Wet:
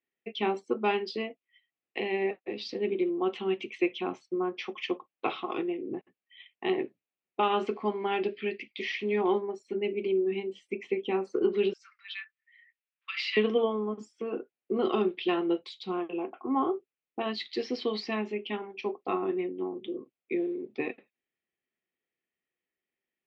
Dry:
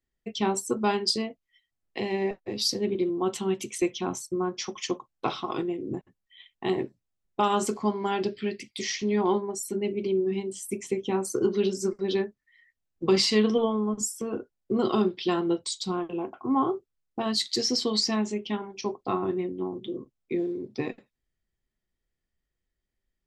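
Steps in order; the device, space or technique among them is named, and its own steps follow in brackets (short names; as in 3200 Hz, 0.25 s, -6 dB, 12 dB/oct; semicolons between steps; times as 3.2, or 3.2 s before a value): 11.73–13.37 steep high-pass 1300 Hz 48 dB/oct; phone earpiece (speaker cabinet 340–3000 Hz, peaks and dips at 600 Hz -4 dB, 970 Hz -7 dB, 1500 Hz -5 dB, 2500 Hz +5 dB); gain +1.5 dB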